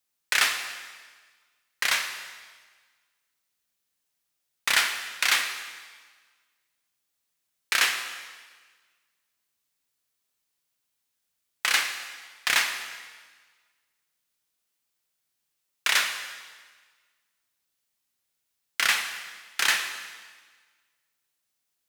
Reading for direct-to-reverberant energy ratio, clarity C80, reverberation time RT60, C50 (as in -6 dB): 5.5 dB, 9.0 dB, 1.5 s, 7.5 dB